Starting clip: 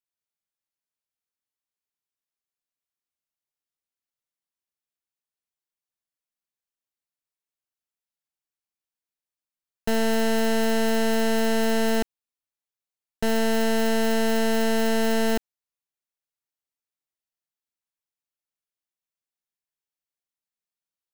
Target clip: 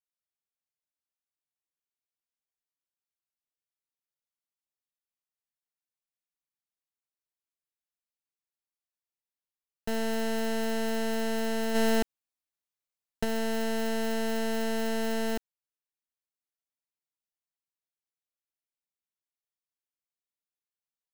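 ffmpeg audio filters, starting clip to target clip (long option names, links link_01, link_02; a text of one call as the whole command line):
ffmpeg -i in.wav -filter_complex "[0:a]asplit=3[link_01][link_02][link_03];[link_01]afade=type=out:start_time=11.74:duration=0.02[link_04];[link_02]acontrast=30,afade=type=in:start_time=11.74:duration=0.02,afade=type=out:start_time=13.23:duration=0.02[link_05];[link_03]afade=type=in:start_time=13.23:duration=0.02[link_06];[link_04][link_05][link_06]amix=inputs=3:normalize=0,volume=-7.5dB" out.wav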